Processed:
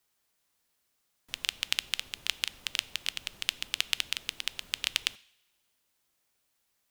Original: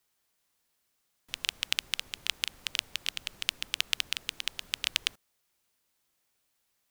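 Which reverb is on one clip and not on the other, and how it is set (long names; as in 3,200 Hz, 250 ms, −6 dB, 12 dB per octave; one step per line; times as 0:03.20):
coupled-rooms reverb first 0.61 s, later 1.7 s, from −18 dB, DRR 18.5 dB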